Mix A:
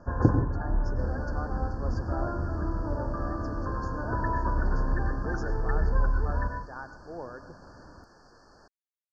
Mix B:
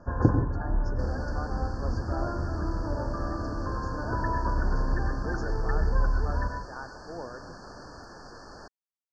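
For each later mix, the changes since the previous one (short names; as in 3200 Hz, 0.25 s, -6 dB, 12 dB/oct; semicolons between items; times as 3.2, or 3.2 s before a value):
second sound +10.5 dB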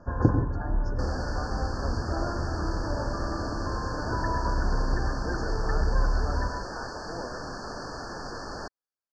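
second sound +9.0 dB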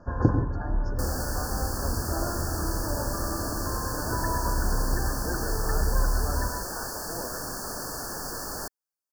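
second sound: remove LPF 4800 Hz 24 dB/oct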